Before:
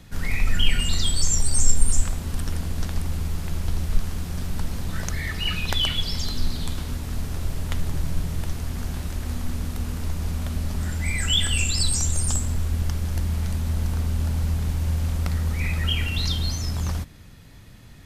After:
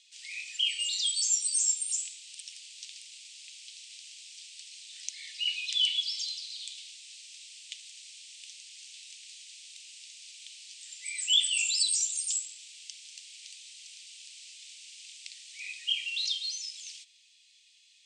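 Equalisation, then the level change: steep high-pass 2500 Hz 48 dB/oct; elliptic low-pass 8400 Hz, stop band 50 dB; -1.5 dB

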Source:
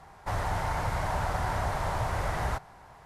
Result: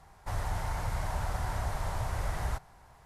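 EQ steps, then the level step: low shelf 91 Hz +10.5 dB; high shelf 4700 Hz +8.5 dB; -7.5 dB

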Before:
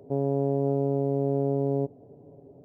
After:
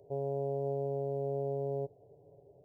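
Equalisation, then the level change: fixed phaser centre 590 Hz, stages 4; -5.5 dB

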